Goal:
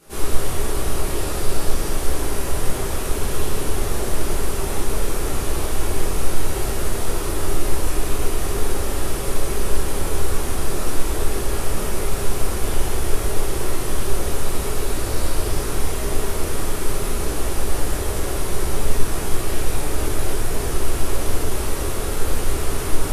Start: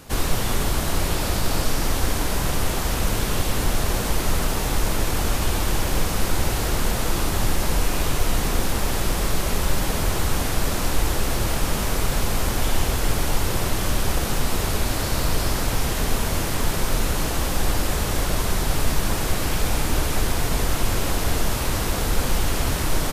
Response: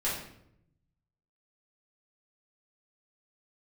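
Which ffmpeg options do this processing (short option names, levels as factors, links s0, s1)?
-filter_complex "[0:a]equalizer=f=160:t=o:w=0.67:g=-4,equalizer=f=400:t=o:w=0.67:g=7,equalizer=f=10000:t=o:w=0.67:g=8[s0];[1:a]atrim=start_sample=2205,asetrate=29988,aresample=44100[s1];[s0][s1]afir=irnorm=-1:irlink=0,volume=0.211"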